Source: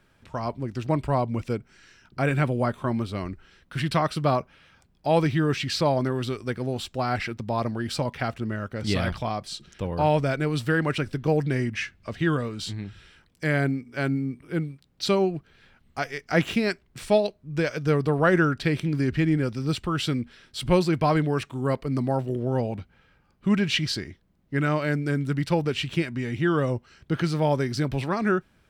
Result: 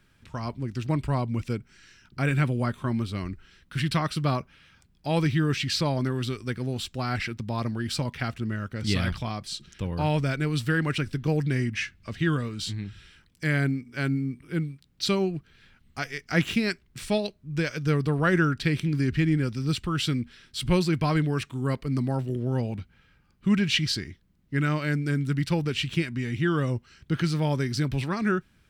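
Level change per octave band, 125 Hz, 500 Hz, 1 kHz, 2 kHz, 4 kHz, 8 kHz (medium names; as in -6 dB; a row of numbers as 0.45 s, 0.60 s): +0.5 dB, -5.5 dB, -5.0 dB, -1.0 dB, +1.0 dB, +1.5 dB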